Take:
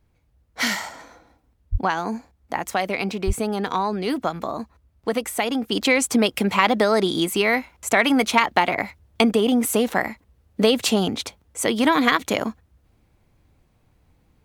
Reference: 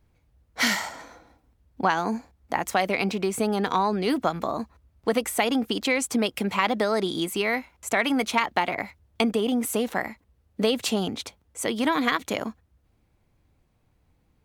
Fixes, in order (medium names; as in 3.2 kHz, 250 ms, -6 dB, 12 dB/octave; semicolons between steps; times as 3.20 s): de-plosive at 1.71/3.26 s; gain correction -5.5 dB, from 5.72 s